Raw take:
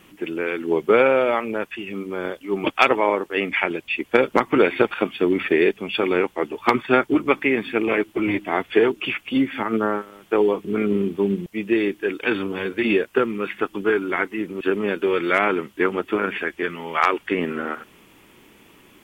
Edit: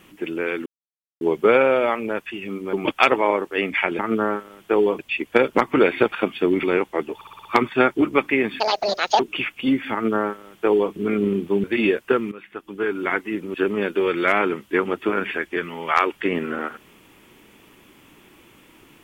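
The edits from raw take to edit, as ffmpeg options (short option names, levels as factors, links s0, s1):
-filter_complex "[0:a]asplit=15[s0][s1][s2][s3][s4][s5][s6][s7][s8][s9][s10][s11][s12][s13][s14];[s0]atrim=end=0.66,asetpts=PTS-STARTPTS,afade=t=out:st=0.656:d=0.004:c=hsin,apad=pad_dur=0.55[s15];[s1]atrim=start=0.66:end=2.182,asetpts=PTS-STARTPTS,afade=t=in:d=0.004:c=hsin[s16];[s2]atrim=start=2.518:end=3.782[s17];[s3]atrim=start=9.608:end=10.612[s18];[s4]atrim=start=3.778:end=5.422[s19];[s5]atrim=start=6.058:end=6.642[s20];[s6]atrim=start=6.578:end=6.642[s21];[s7]atrim=start=6.578:end=6.642[s22];[s8]atrim=start=6.578:end=6.642[s23];[s9]atrim=start=6.578:end=6.642[s24];[s10]atrim=start=6.578:end=7.734[s25];[s11]atrim=start=7.73:end=8.88,asetpts=PTS-STARTPTS,asetrate=85113,aresample=44100,atrim=end_sample=26277,asetpts=PTS-STARTPTS[s26];[s12]atrim=start=8.876:end=11.322[s27];[s13]atrim=start=12.698:end=13.38,asetpts=PTS-STARTPTS,afade=t=out:st=0.678:d=0.004:c=hsin:silence=0.199526[s28];[s14]atrim=start=13.38,asetpts=PTS-STARTPTS,afade=t=in:d=0.74:c=qua:silence=0.199526[s29];[s15][s16]concat=n=2:v=0:a=1[s30];[s30][s17]acrossfade=d=0.004:c1=hsin:c2=hsin[s31];[s31][s18]acrossfade=d=0.004:c1=hsin:c2=hsin[s32];[s32][s19]acrossfade=d=0.004:c1=hsin:c2=hsin[s33];[s33][s20]acrossfade=d=0.004:c1=hsin:c2=hsin[s34];[s34][s21]acrossfade=d=0.004:c1=hsin:c2=hsin[s35];[s35][s22]acrossfade=d=0.004:c1=hsin:c2=hsin[s36];[s36][s23]acrossfade=d=0.004:c1=hsin:c2=hsin[s37];[s37][s24]acrossfade=d=0.004:c1=hsin:c2=hsin[s38];[s38][s25]acrossfade=d=0.004:c1=hsin:c2=hsin[s39];[s39][s26]acrossfade=d=0.004:c1=hsin:c2=hsin[s40];[s40][s27]acrossfade=d=0.004:c1=hsin:c2=hsin[s41];[s28][s29]concat=n=2:v=0:a=1[s42];[s41][s42]acrossfade=d=0.004:c1=hsin:c2=hsin"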